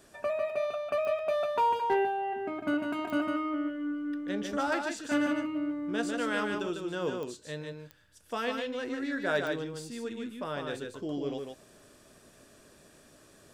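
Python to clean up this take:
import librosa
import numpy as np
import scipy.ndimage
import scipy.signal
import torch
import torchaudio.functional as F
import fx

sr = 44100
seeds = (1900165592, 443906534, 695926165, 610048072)

y = fx.fix_declip(x, sr, threshold_db=-19.5)
y = fx.fix_declick_ar(y, sr, threshold=10.0)
y = fx.fix_echo_inverse(y, sr, delay_ms=149, level_db=-4.5)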